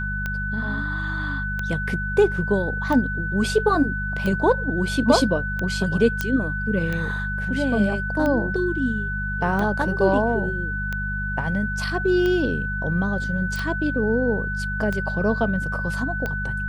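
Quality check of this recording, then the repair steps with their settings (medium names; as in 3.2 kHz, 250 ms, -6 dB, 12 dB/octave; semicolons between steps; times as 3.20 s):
hum 50 Hz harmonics 4 -29 dBFS
tick 45 rpm -14 dBFS
whine 1.5 kHz -27 dBFS
6.21 s: pop -8 dBFS
13.56 s: pop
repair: de-click; de-hum 50 Hz, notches 4; band-stop 1.5 kHz, Q 30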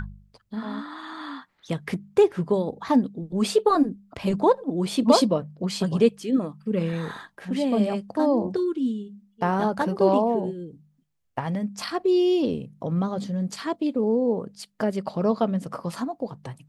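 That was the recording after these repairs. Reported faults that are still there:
nothing left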